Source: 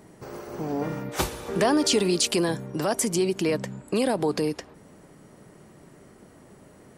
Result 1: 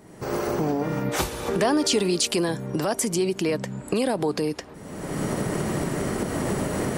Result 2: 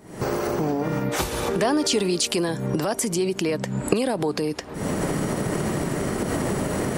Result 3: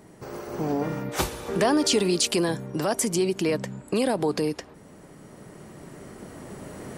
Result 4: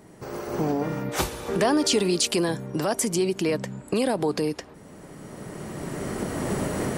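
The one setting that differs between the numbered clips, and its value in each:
recorder AGC, rising by: 37, 91, 5.2, 13 dB/s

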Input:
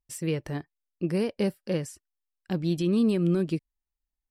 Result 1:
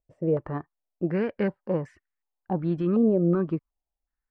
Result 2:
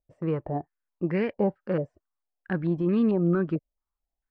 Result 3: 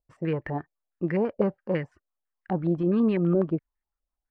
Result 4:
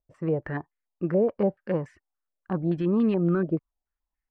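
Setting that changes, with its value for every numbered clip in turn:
stepped low-pass, rate: 2.7, 4.5, 12, 7 Hz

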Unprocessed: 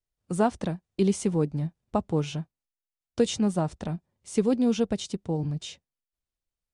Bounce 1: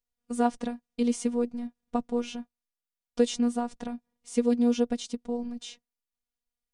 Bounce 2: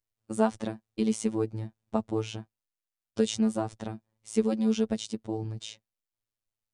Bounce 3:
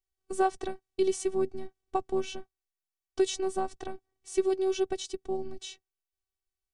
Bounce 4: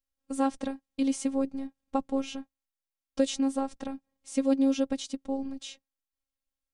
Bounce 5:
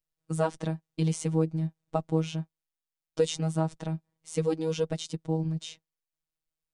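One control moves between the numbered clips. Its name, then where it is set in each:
robotiser, frequency: 240, 110, 380, 270, 160 Hz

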